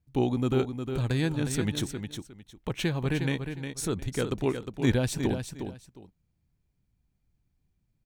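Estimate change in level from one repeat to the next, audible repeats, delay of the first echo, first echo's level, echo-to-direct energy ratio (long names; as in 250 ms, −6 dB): −13.0 dB, 2, 358 ms, −7.5 dB, −7.5 dB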